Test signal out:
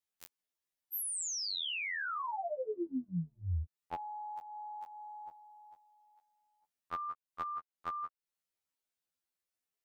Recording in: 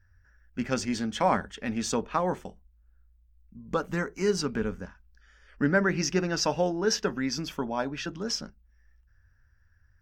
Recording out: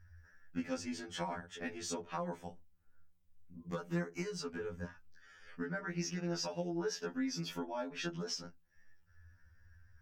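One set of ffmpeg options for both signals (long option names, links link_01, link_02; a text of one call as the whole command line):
ffmpeg -i in.wav -af "acompressor=threshold=-38dB:ratio=6,afftfilt=real='re*2*eq(mod(b,4),0)':imag='im*2*eq(mod(b,4),0)':win_size=2048:overlap=0.75,volume=3dB" out.wav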